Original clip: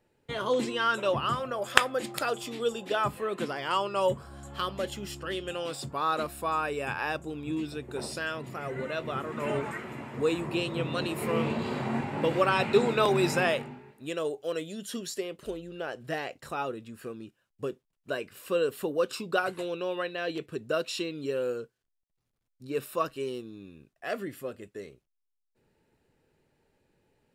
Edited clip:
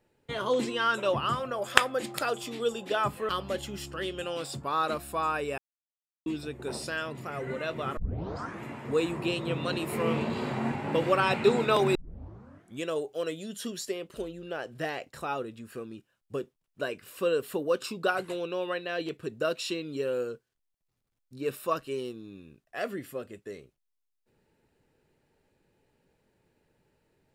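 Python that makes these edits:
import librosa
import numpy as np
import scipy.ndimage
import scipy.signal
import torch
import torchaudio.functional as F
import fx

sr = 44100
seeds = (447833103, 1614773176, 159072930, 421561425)

y = fx.edit(x, sr, fx.cut(start_s=3.29, length_s=1.29),
    fx.silence(start_s=6.87, length_s=0.68),
    fx.tape_start(start_s=9.26, length_s=0.67),
    fx.tape_start(start_s=13.24, length_s=0.88), tone=tone)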